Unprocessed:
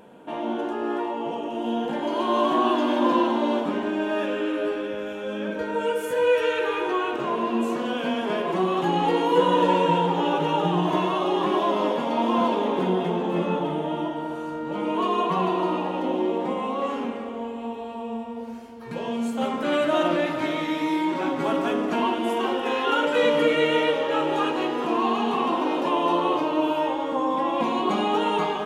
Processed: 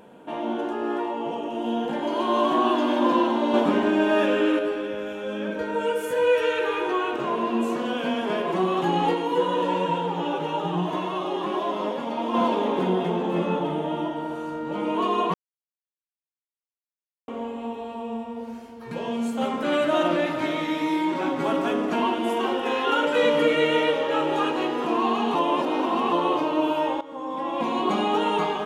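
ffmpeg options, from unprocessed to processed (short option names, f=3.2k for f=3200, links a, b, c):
-filter_complex "[0:a]asplit=3[a][b][c];[a]afade=t=out:st=9.13:d=0.02[d];[b]flanger=delay=3.4:depth=5.8:regen=64:speed=1:shape=triangular,afade=t=in:st=9.13:d=0.02,afade=t=out:st=12.33:d=0.02[e];[c]afade=t=in:st=12.33:d=0.02[f];[d][e][f]amix=inputs=3:normalize=0,asplit=8[g][h][i][j][k][l][m][n];[g]atrim=end=3.542[o];[h]atrim=start=3.538:end=4.592,asetpts=PTS-STARTPTS,volume=5dB[p];[i]atrim=start=4.588:end=15.34,asetpts=PTS-STARTPTS,afade=t=out:st=10.748:d=0.004:c=hsin[q];[j]atrim=start=15.34:end=17.28,asetpts=PTS-STARTPTS,volume=0[r];[k]atrim=start=17.28:end=25.352,asetpts=PTS-STARTPTS,afade=t=in:d=0.004:c=hsin[s];[l]atrim=start=25.348:end=26.122,asetpts=PTS-STARTPTS,areverse[t];[m]atrim=start=26.118:end=27.01,asetpts=PTS-STARTPTS,afade=t=out:st=0.888:d=0.004:c=hsin:silence=0.158489[u];[n]atrim=start=27.01,asetpts=PTS-STARTPTS,afade=t=in:d=0.82:silence=0.158489[v];[o][p]acrossfade=d=0.004:c1=hsin:c2=hsin[w];[q][r][s]concat=n=3:v=0:a=1[x];[w][x]acrossfade=d=0.004:c1=hsin:c2=hsin[y];[y][t]acrossfade=d=0.004:c1=hsin:c2=hsin[z];[u][v]concat=n=2:v=0:a=1[aa];[z][aa]acrossfade=d=0.004:c1=hsin:c2=hsin"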